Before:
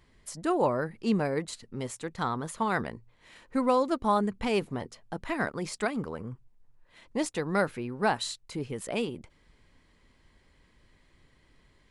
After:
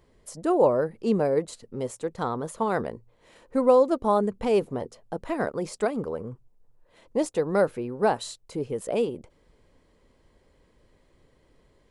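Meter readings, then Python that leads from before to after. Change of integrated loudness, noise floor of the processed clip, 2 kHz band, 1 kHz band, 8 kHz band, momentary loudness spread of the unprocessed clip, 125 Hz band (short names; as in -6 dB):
+4.5 dB, -63 dBFS, -3.5 dB, +1.5 dB, -0.5 dB, 14 LU, +0.5 dB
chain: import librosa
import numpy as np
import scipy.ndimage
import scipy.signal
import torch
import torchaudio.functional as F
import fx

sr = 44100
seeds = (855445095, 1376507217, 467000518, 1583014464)

y = fx.graphic_eq(x, sr, hz=(500, 2000, 4000), db=(9, -5, -3))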